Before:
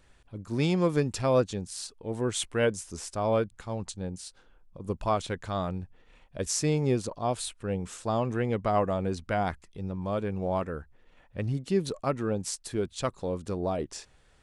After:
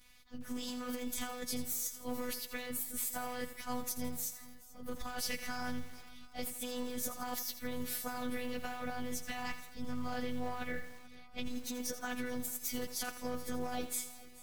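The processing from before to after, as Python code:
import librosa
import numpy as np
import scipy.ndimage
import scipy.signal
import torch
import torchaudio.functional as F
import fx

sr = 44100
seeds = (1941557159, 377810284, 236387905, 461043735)

p1 = fx.partial_stretch(x, sr, pct=113)
p2 = 10.0 ** (-28.0 / 20.0) * (np.abs((p1 / 10.0 ** (-28.0 / 20.0) + 3.0) % 4.0 - 2.0) - 1.0)
p3 = p1 + (p2 * librosa.db_to_amplitude(-10.0))
p4 = fx.tone_stack(p3, sr, knobs='5-5-5')
p5 = fx.robotise(p4, sr, hz=248.0)
p6 = fx.over_compress(p5, sr, threshold_db=-51.0, ratio=-1.0)
p7 = p6 + fx.echo_swing(p6, sr, ms=728, ratio=1.5, feedback_pct=43, wet_db=-20.5, dry=0)
p8 = fx.echo_crushed(p7, sr, ms=83, feedback_pct=55, bits=10, wet_db=-11)
y = p8 * librosa.db_to_amplitude(12.5)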